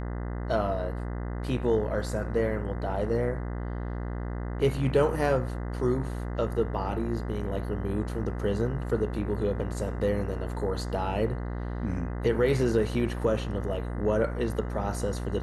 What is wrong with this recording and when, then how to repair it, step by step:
mains buzz 60 Hz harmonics 34 −33 dBFS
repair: hum removal 60 Hz, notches 34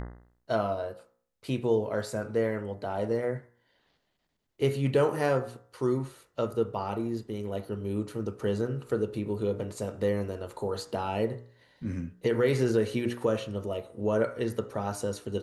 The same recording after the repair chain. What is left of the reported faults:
none of them is left

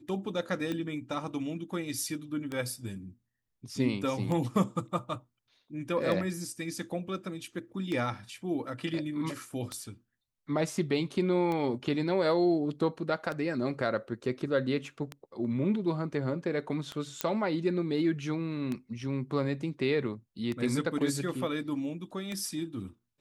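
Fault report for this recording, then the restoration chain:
scratch tick 33 1/3 rpm −21 dBFS
0:17.21: click −11 dBFS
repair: click removal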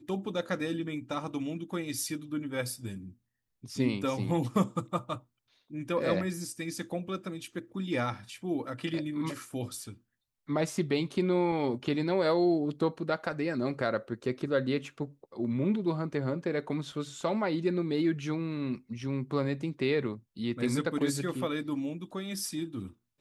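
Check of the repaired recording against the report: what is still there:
none of them is left

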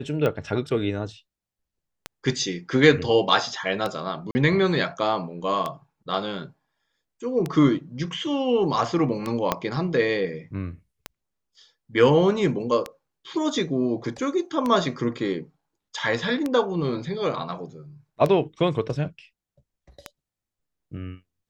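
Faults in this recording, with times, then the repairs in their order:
scratch tick 33 1/3 rpm −13 dBFS
0:04.31–0:04.35: drop-out 40 ms
0:09.52: click −7 dBFS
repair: click removal
repair the gap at 0:04.31, 40 ms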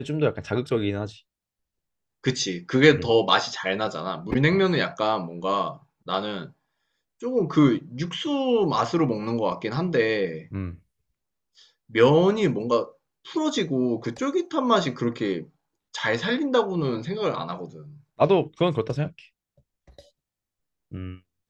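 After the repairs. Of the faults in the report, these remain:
0:09.52: click

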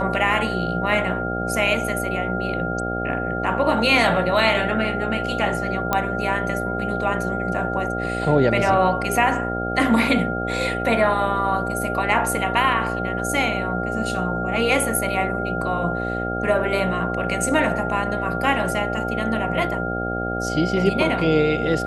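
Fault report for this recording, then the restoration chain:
mains buzz 60 Hz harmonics 13 −27 dBFS
whistle 1,400 Hz −27 dBFS
0:05.93: click −6 dBFS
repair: click removal
hum removal 60 Hz, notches 13
notch filter 1,400 Hz, Q 30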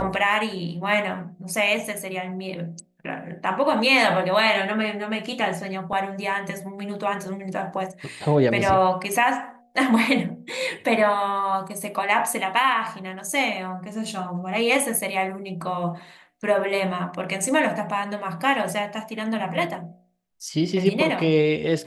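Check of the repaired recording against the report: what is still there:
none of them is left

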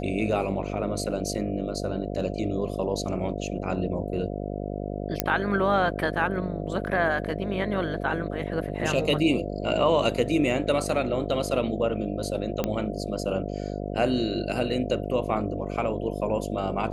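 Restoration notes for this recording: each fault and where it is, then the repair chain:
mains buzz 50 Hz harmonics 14 −32 dBFS
0:05.20: click −4 dBFS
0:12.64: click −12 dBFS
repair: click removal
hum removal 50 Hz, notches 14

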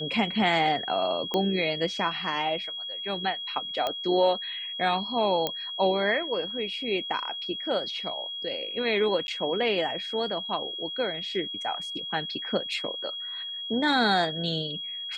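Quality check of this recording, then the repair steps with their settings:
whistle 3,300 Hz −33 dBFS
0:01.34: click −14 dBFS
0:03.87: click −15 dBFS
0:05.47: click −12 dBFS
0:09.27–0:09.28: drop-out 11 ms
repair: click removal
notch filter 3,300 Hz, Q 30
repair the gap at 0:09.27, 11 ms

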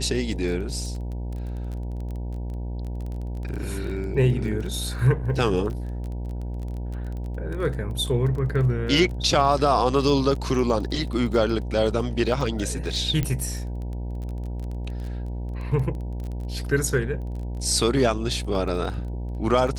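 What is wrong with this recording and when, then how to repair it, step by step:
mains buzz 60 Hz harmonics 16 −30 dBFS
surface crackle 21 per second −32 dBFS
0:13.23: click −12 dBFS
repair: click removal
hum removal 60 Hz, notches 16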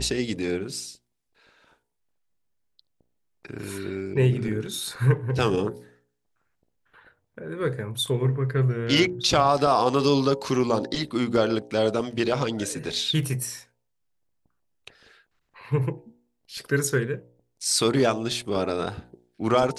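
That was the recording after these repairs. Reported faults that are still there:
0:13.23: click

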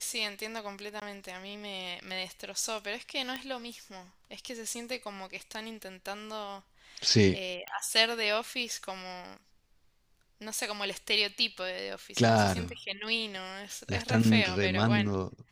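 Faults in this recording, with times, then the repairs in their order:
0:01.00–0:01.02: drop-out 17 ms
0:03.36: click −20 dBFS
0:07.68: click −22 dBFS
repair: click removal
repair the gap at 0:01.00, 17 ms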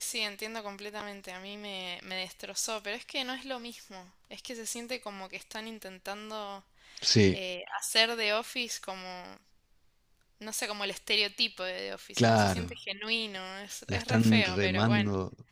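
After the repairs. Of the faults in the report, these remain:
none of them is left

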